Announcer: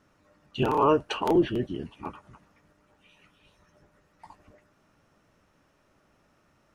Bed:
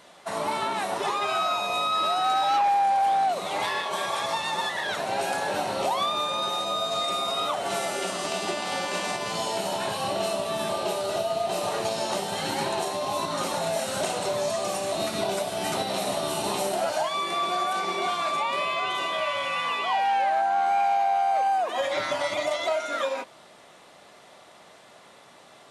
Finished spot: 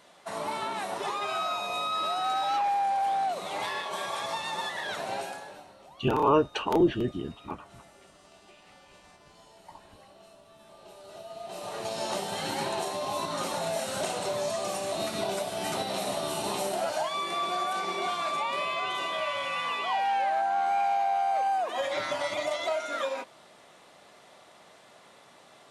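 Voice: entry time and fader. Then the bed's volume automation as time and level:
5.45 s, -0.5 dB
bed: 5.14 s -5 dB
5.79 s -27 dB
10.6 s -27 dB
12.05 s -3.5 dB

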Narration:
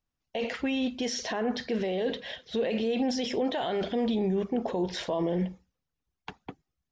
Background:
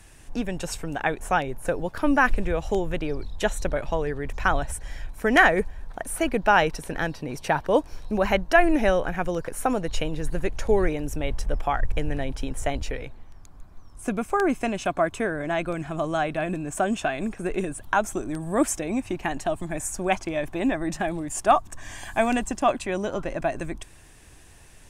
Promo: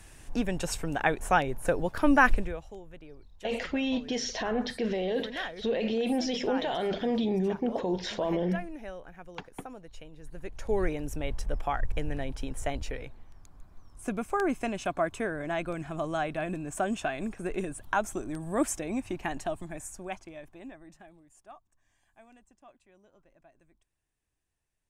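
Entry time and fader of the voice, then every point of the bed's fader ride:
3.10 s, -0.5 dB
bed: 2.33 s -1 dB
2.73 s -20.5 dB
10.15 s -20.5 dB
10.83 s -5.5 dB
19.4 s -5.5 dB
21.71 s -34 dB

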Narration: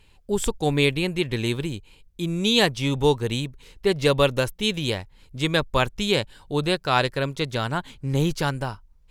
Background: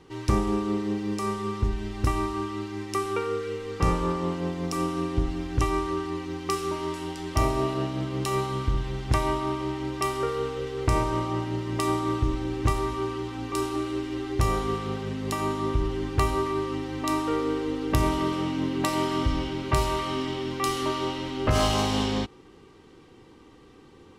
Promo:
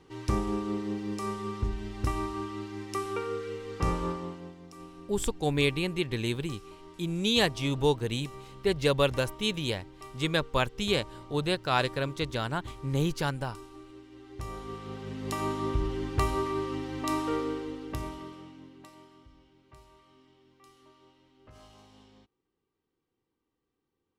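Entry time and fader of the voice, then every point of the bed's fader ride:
4.80 s, -5.5 dB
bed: 4.07 s -5 dB
4.65 s -19.5 dB
14.1 s -19.5 dB
15.37 s -3.5 dB
17.36 s -3.5 dB
19.26 s -31.5 dB

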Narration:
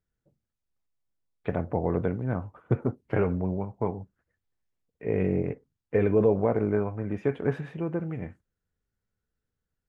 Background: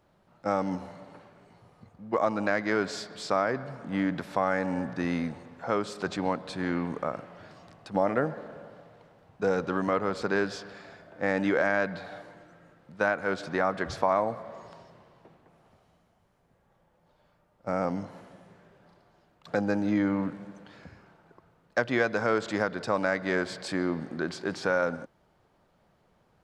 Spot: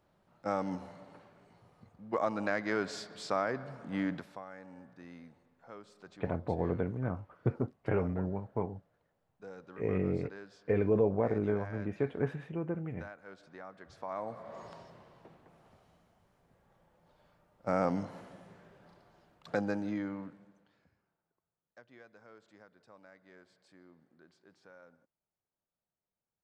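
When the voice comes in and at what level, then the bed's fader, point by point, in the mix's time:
4.75 s, -5.5 dB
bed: 4.13 s -5.5 dB
4.45 s -21.5 dB
13.87 s -21.5 dB
14.61 s -1 dB
19.33 s -1 dB
21.39 s -30.5 dB

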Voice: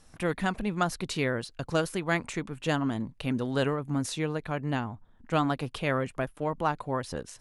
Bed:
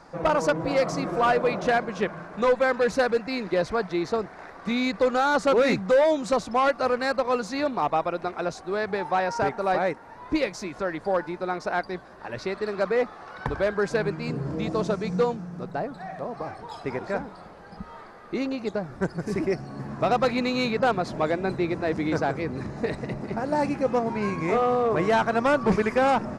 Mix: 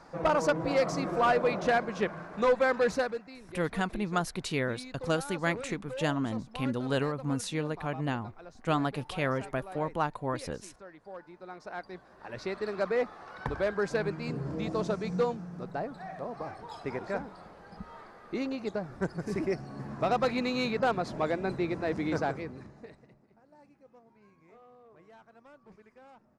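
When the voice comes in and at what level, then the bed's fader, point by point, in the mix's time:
3.35 s, -2.0 dB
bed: 2.92 s -3.5 dB
3.38 s -20.5 dB
11.09 s -20.5 dB
12.5 s -5 dB
22.28 s -5 dB
23.34 s -34 dB

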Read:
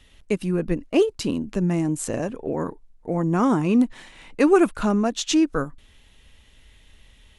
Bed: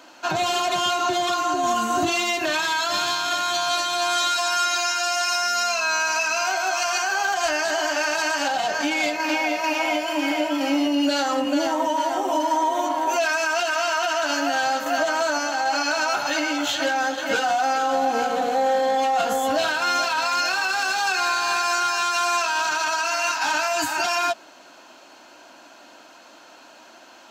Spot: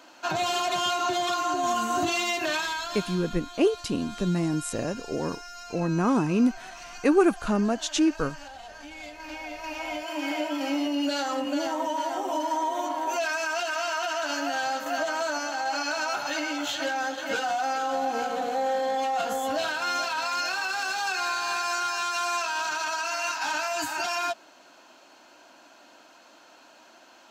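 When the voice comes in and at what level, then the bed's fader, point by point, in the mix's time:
2.65 s, -3.5 dB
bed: 2.54 s -4 dB
3.41 s -20 dB
8.87 s -20 dB
10.35 s -6 dB

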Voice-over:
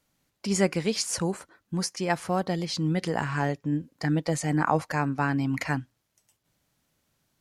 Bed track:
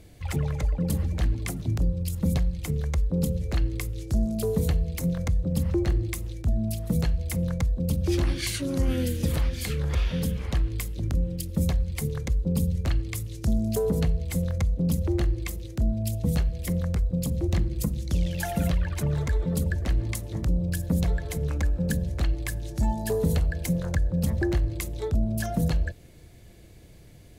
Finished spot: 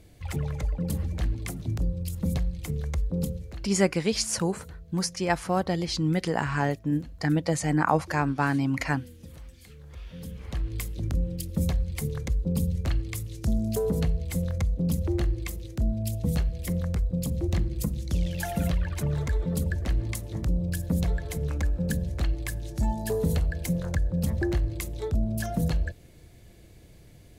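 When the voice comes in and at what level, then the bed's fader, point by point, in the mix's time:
3.20 s, +1.0 dB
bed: 3.23 s -3 dB
3.77 s -20 dB
9.85 s -20 dB
10.79 s -1.5 dB

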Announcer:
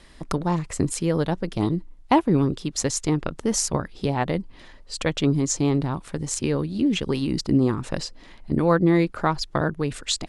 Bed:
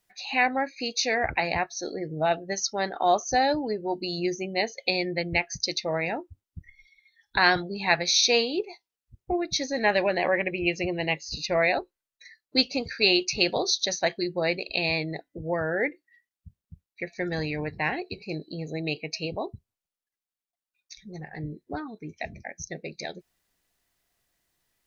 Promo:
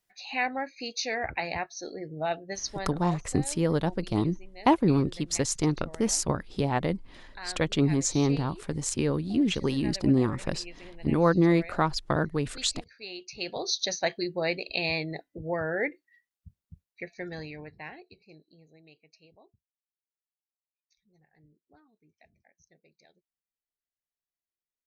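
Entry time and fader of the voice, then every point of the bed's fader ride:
2.55 s, -3.0 dB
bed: 2.71 s -5.5 dB
3.22 s -20.5 dB
13.08 s -20.5 dB
13.77 s -2.5 dB
16.79 s -2.5 dB
18.93 s -27 dB

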